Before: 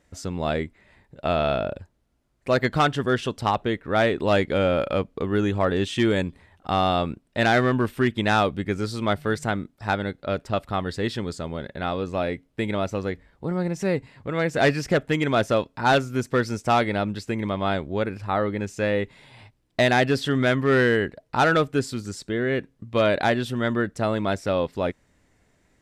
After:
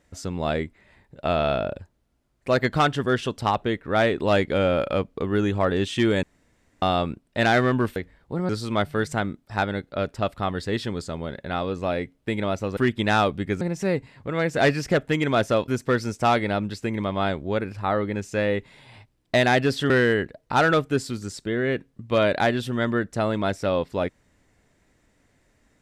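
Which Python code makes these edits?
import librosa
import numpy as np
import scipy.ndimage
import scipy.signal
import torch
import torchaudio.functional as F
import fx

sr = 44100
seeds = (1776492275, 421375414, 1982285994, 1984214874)

y = fx.edit(x, sr, fx.room_tone_fill(start_s=6.23, length_s=0.59),
    fx.swap(start_s=7.96, length_s=0.84, other_s=13.08, other_length_s=0.53),
    fx.cut(start_s=15.68, length_s=0.45),
    fx.cut(start_s=20.35, length_s=0.38), tone=tone)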